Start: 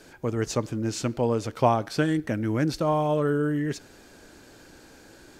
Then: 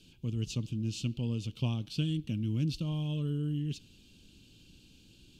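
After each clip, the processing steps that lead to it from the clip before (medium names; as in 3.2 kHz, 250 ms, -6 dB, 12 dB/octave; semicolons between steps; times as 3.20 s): FFT filter 190 Hz 0 dB, 680 Hz -26 dB, 1.1 kHz -23 dB, 1.9 kHz -28 dB, 2.8 kHz +5 dB, 5.5 kHz -8 dB, 11 kHz -10 dB; trim -2 dB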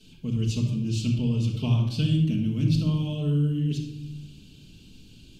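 reverberation RT60 0.95 s, pre-delay 5 ms, DRR -7 dB; trim -1.5 dB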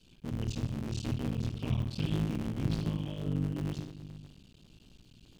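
cycle switcher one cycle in 3, muted; loudspeaker Doppler distortion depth 0.23 ms; trim -7 dB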